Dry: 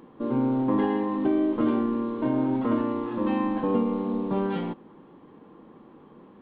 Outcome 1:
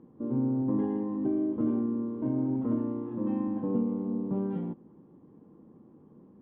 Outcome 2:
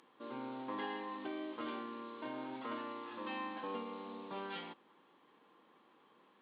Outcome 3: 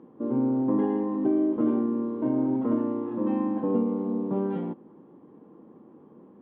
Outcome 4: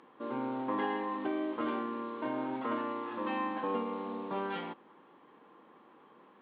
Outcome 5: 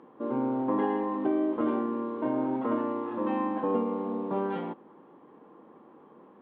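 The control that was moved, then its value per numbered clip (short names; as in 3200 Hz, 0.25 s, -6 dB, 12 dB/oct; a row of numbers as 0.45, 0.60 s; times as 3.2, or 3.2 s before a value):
band-pass, frequency: 110, 5300, 290, 2000, 770 Hz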